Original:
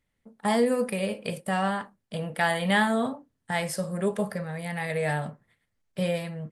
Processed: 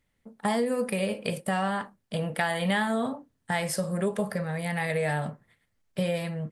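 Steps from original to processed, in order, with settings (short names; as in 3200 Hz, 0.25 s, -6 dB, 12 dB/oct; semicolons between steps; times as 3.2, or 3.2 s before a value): compressor 4:1, threshold -27 dBFS, peak gain reduction 8 dB; gain +3 dB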